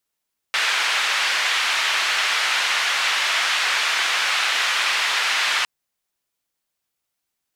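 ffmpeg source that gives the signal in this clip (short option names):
-f lavfi -i "anoisesrc=c=white:d=5.11:r=44100:seed=1,highpass=f=1300,lowpass=f=2800,volume=-5.1dB"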